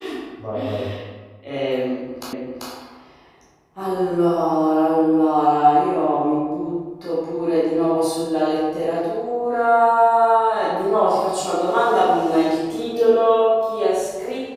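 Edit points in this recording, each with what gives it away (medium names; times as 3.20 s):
2.33 s: repeat of the last 0.39 s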